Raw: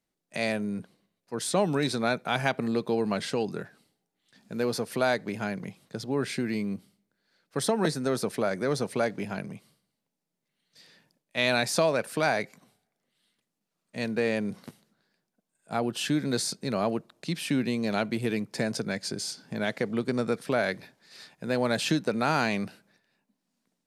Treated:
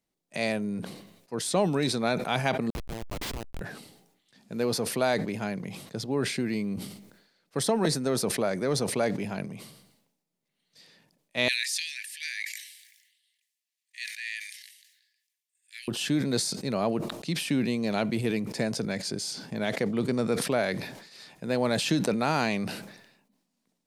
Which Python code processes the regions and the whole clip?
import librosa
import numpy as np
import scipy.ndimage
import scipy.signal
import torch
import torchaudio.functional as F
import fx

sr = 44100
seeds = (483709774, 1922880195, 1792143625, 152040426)

y = fx.chain(x, sr, fx.highpass(hz=810.0, slope=12),
    fx.high_shelf(hz=2600.0, db=11.5),
    fx.schmitt(flips_db=-28.0), at=(2.7, 3.61))
y = fx.chain(y, sr, fx.cheby1_highpass(hz=1700.0, order=8),
    fx.sustainer(db_per_s=50.0), at=(11.48, 15.88))
y = fx.peak_eq(y, sr, hz=1500.0, db=-4.0, octaves=0.49)
y = fx.sustainer(y, sr, db_per_s=65.0)